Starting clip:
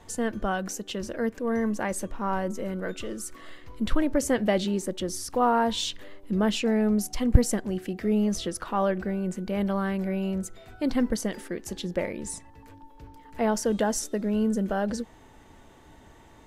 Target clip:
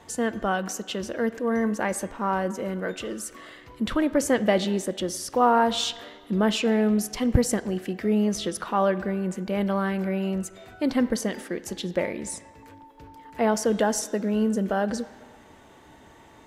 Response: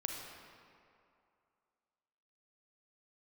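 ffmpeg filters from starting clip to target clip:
-filter_complex "[0:a]highpass=frequency=110:poles=1,asplit=2[link_01][link_02];[link_02]aemphasis=mode=production:type=bsi[link_03];[1:a]atrim=start_sample=2205,asetrate=66150,aresample=44100,lowpass=3200[link_04];[link_03][link_04]afir=irnorm=-1:irlink=0,volume=-7.5dB[link_05];[link_01][link_05]amix=inputs=2:normalize=0,volume=1.5dB"

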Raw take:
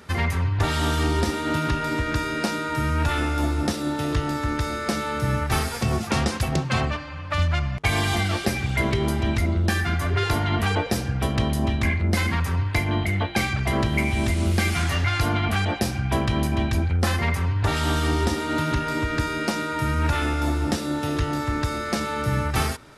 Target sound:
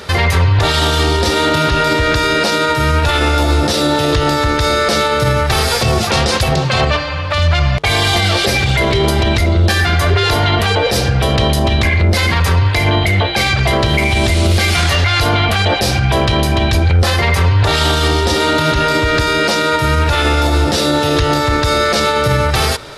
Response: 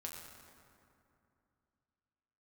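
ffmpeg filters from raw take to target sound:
-af "equalizer=frequency=250:width_type=o:width=1:gain=-7,equalizer=frequency=500:width_type=o:width=1:gain=7,equalizer=frequency=4000:width_type=o:width=1:gain=8,alimiter=level_in=17.5dB:limit=-1dB:release=50:level=0:latency=1,volume=-3.5dB"

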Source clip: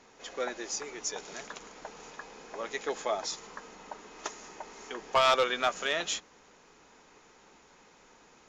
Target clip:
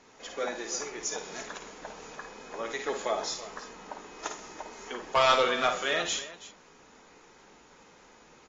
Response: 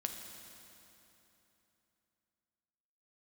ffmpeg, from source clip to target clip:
-af "aecho=1:1:53|79|130|332:0.447|0.158|0.112|0.168" -ar 32000 -c:a aac -b:a 24k

